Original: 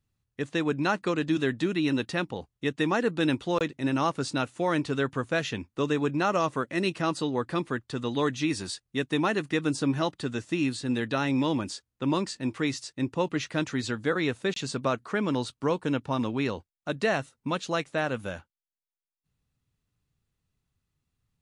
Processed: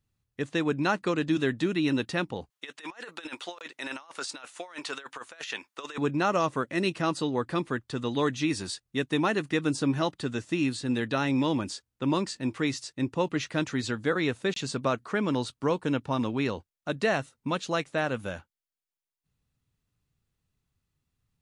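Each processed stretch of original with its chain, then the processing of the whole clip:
0:02.50–0:05.98: high-pass filter 840 Hz + compressor whose output falls as the input rises −38 dBFS, ratio −0.5
whole clip: no processing

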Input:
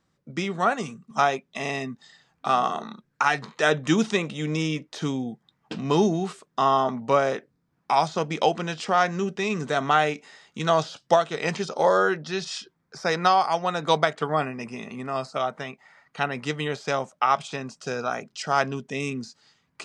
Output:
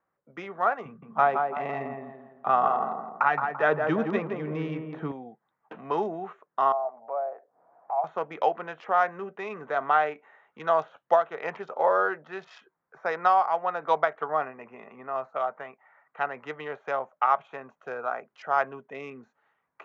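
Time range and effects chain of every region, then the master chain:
0:00.85–0:05.12: low-pass filter 4,000 Hz + parametric band 150 Hz +12 dB 2 octaves + tape delay 168 ms, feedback 48%, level −3 dB, low-pass 1,500 Hz
0:06.72–0:08.04: resonant band-pass 690 Hz, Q 5.5 + upward compression, threshold −31 dBFS
whole clip: adaptive Wiener filter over 9 samples; Butterworth low-pass 7,000 Hz 72 dB per octave; three-way crossover with the lows and the highs turned down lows −19 dB, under 470 Hz, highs −21 dB, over 2,000 Hz

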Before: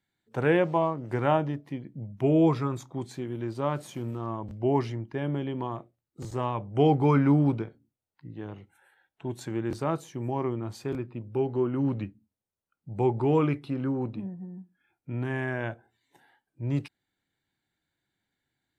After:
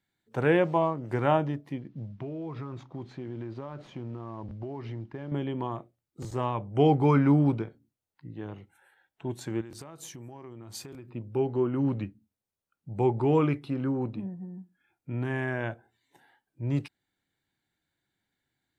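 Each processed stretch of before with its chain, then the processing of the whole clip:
0:01.78–0:05.32: variable-slope delta modulation 64 kbit/s + downward compressor 16 to 1, threshold −32 dBFS + high-frequency loss of the air 240 metres
0:09.61–0:11.10: downward compressor 12 to 1, threshold −40 dBFS + high-shelf EQ 3,800 Hz +10.5 dB
whole clip: no processing

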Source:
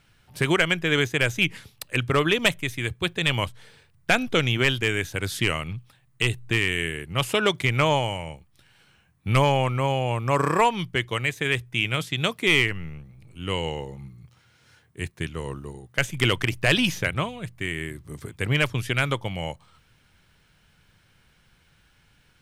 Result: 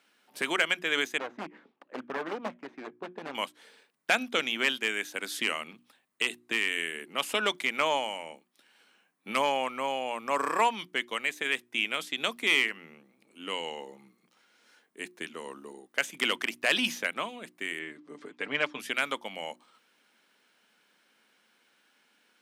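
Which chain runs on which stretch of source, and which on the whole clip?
0:01.18–0:03.35: phase distortion by the signal itself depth 0.55 ms + low-pass filter 1,200 Hz + hard clipping −19 dBFS
0:17.79–0:18.80: high-frequency loss of the air 130 metres + comb filter 6.8 ms, depth 52%
whole clip: elliptic high-pass filter 230 Hz, stop band 70 dB; mains-hum notches 60/120/180/240/300/360 Hz; dynamic equaliser 360 Hz, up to −7 dB, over −39 dBFS, Q 1.1; level −3 dB

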